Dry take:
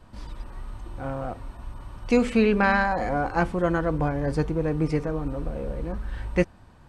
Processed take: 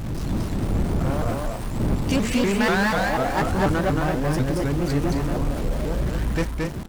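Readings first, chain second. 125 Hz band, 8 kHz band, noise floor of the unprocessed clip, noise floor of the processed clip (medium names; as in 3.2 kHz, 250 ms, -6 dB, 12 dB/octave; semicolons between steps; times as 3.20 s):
+6.0 dB, no reading, -51 dBFS, -29 dBFS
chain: wind noise 180 Hz -30 dBFS; treble shelf 4.4 kHz +9 dB; band-stop 470 Hz, Q 12; in parallel at -8 dB: companded quantiser 2-bit; on the sum: saturation -17.5 dBFS, distortion -8 dB; loudspeakers at several distances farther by 77 m -3 dB, 89 m -10 dB; vibrato with a chosen wave saw up 4.1 Hz, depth 250 cents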